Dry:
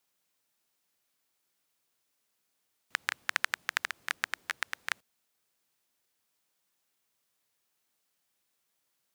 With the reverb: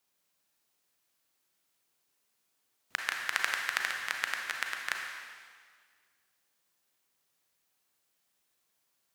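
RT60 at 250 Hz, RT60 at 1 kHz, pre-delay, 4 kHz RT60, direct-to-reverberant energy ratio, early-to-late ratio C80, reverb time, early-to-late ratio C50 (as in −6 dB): 1.7 s, 1.8 s, 32 ms, 1.7 s, 1.5 dB, 4.0 dB, 1.8 s, 2.5 dB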